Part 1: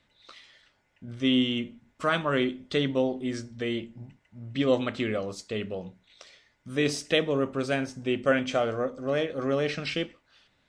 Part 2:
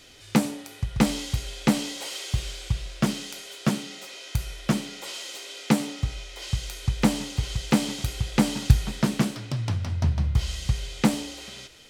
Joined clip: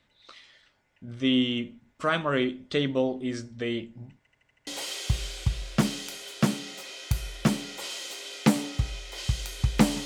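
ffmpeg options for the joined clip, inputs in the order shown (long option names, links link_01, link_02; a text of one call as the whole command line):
ffmpeg -i cue0.wav -i cue1.wav -filter_complex "[0:a]apad=whole_dur=10.05,atrim=end=10.05,asplit=6[link_01][link_02][link_03][link_04][link_05][link_06];[link_01]atrim=end=4.272[link_07];[link_02]atrim=start=4.188:end=4.272[link_08];[link_03]atrim=start=4.188:end=4.272[link_09];[link_04]atrim=start=4.188:end=4.272[link_10];[link_05]atrim=start=4.188:end=4.272[link_11];[link_06]atrim=start=4.188:end=4.272[link_12];[1:a]atrim=start=1.908:end=7.29[link_13];[link_07][link_08]acrossfade=duration=0.004:curve1=hsin:curve2=hsin[link_14];[link_14][link_09]acrossfade=duration=0.004:curve1=hsin:curve2=hsin[link_15];[link_15][link_10]acrossfade=duration=0.004:curve1=hsin:curve2=hsin[link_16];[link_16][link_11]acrossfade=duration=0.004:curve1=hsin:curve2=hsin[link_17];[link_17][link_12]acrossfade=duration=0.004:curve1=hsin:curve2=hsin[link_18];[link_18][link_13]acrossfade=duration=0.004:curve1=hsin:curve2=hsin" out.wav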